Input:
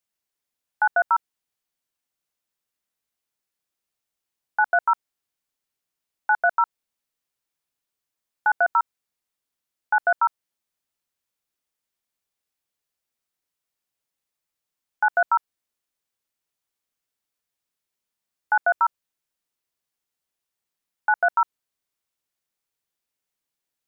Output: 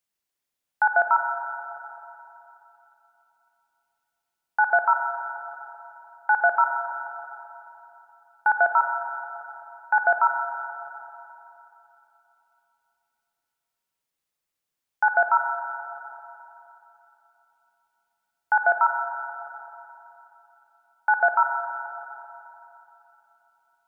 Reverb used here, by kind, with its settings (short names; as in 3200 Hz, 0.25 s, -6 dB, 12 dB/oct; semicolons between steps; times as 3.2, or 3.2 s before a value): spring tank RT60 3.2 s, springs 42/53/59 ms, chirp 35 ms, DRR 6 dB